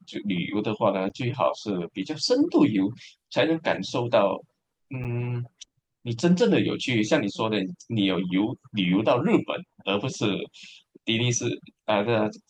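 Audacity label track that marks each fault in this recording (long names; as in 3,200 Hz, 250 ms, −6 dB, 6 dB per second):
1.090000	1.100000	drop-out 8 ms
5.040000	5.050000	drop-out 8.3 ms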